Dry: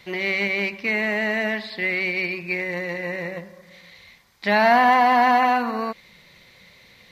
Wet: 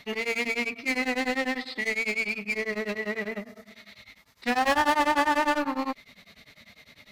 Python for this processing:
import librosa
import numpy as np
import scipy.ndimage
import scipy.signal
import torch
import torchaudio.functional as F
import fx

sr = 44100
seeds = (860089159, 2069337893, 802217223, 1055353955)

p1 = fx.tube_stage(x, sr, drive_db=16.0, bias=0.45)
p2 = 10.0 ** (-27.0 / 20.0) * (np.abs((p1 / 10.0 ** (-27.0 / 20.0) + 3.0) % 4.0 - 2.0) - 1.0)
p3 = p1 + F.gain(torch.from_numpy(p2), -7.0).numpy()
p4 = fx.pitch_keep_formants(p3, sr, semitones=3.0)
y = p4 * np.abs(np.cos(np.pi * 10.0 * np.arange(len(p4)) / sr))